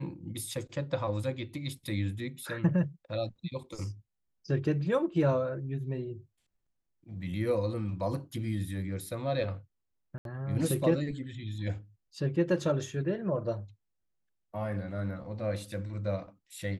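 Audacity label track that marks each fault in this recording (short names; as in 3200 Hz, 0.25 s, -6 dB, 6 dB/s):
10.180000	10.250000	gap 72 ms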